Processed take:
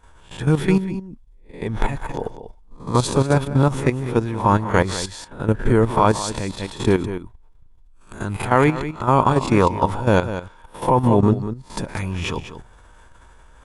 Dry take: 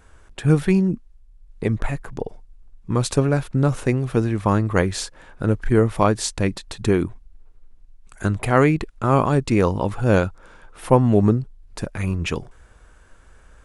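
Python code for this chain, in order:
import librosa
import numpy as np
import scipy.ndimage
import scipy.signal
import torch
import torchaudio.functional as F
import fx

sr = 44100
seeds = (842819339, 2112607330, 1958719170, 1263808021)

p1 = fx.spec_swells(x, sr, rise_s=0.34)
p2 = p1 + 10.0 ** (-10.0 / 20.0) * np.pad(p1, (int(194 * sr / 1000.0), 0))[:len(p1)]
p3 = fx.rider(p2, sr, range_db=5, speed_s=2.0)
p4 = p2 + (p3 * 10.0 ** (-1.0 / 20.0))
p5 = fx.small_body(p4, sr, hz=(930.0, 3400.0), ring_ms=20, db=10)
p6 = fx.level_steps(p5, sr, step_db=11)
y = p6 * 10.0 ** (-3.0 / 20.0)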